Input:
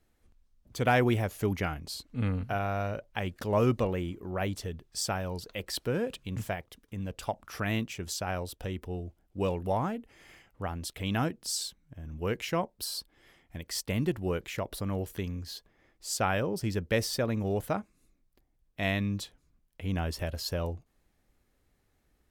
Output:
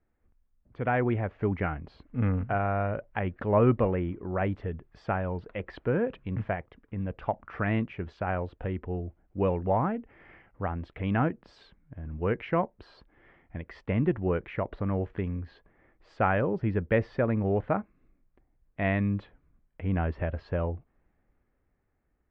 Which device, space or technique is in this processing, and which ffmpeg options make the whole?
action camera in a waterproof case: -af "lowpass=f=2.1k:w=0.5412,lowpass=f=2.1k:w=1.3066,dynaudnorm=f=240:g=11:m=7.5dB,volume=-4dB" -ar 48000 -c:a aac -b:a 128k

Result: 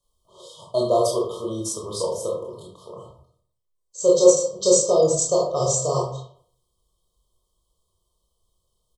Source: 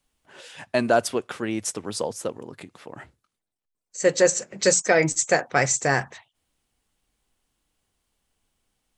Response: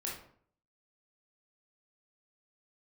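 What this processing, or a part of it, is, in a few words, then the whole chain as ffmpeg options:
microphone above a desk: -filter_complex "[0:a]aecho=1:1:1.9:0.82[a];[1:a]atrim=start_sample=2205[b];[a][b]afir=irnorm=-1:irlink=0,afftfilt=real='re*(1-between(b*sr/4096,1300,3000))':imag='im*(1-between(b*sr/4096,1300,3000))':win_size=4096:overlap=0.75,volume=-1dB"

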